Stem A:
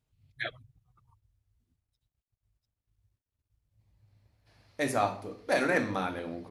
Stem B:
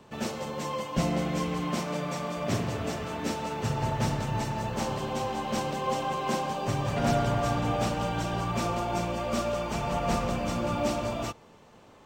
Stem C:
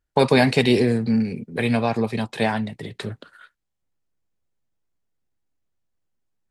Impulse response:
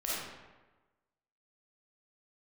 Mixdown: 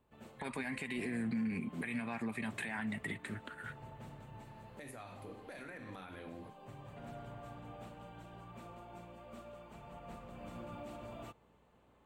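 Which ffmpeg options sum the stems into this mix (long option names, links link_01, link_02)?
-filter_complex "[0:a]acrossover=split=140|1700[link_01][link_02][link_03];[link_01]acompressor=threshold=-49dB:ratio=4[link_04];[link_02]acompressor=threshold=-42dB:ratio=4[link_05];[link_03]acompressor=threshold=-42dB:ratio=4[link_06];[link_04][link_05][link_06]amix=inputs=3:normalize=0,acompressor=threshold=-38dB:ratio=6,volume=-2dB,asplit=2[link_07][link_08];[1:a]aeval=exprs='val(0)+0.001*(sin(2*PI*60*n/s)+sin(2*PI*2*60*n/s)/2+sin(2*PI*3*60*n/s)/3+sin(2*PI*4*60*n/s)/4+sin(2*PI*5*60*n/s)/5)':channel_layout=same,volume=-14dB,afade=type=in:start_time=10.32:duration=0.25:silence=0.398107[link_09];[2:a]acompressor=threshold=-20dB:ratio=6,equalizer=frequency=125:width_type=o:width=1:gain=-8,equalizer=frequency=250:width_type=o:width=1:gain=4,equalizer=frequency=500:width_type=o:width=1:gain=-11,equalizer=frequency=2000:width_type=o:width=1:gain=10,equalizer=frequency=4000:width_type=o:width=1:gain=-6,equalizer=frequency=8000:width_type=o:width=1:gain=9,alimiter=limit=-21.5dB:level=0:latency=1:release=221,adelay=250,volume=-3.5dB[link_10];[link_08]apad=whole_len=531723[link_11];[link_09][link_11]sidechaincompress=threshold=-47dB:ratio=8:attack=16:release=553[link_12];[link_07][link_12]amix=inputs=2:normalize=0,alimiter=level_in=14.5dB:limit=-24dB:level=0:latency=1:release=83,volume=-14.5dB,volume=0dB[link_13];[link_10][link_13]amix=inputs=2:normalize=0,equalizer=frequency=5500:width_type=o:width=0.64:gain=-14,alimiter=level_in=5.5dB:limit=-24dB:level=0:latency=1:release=159,volume=-5.5dB"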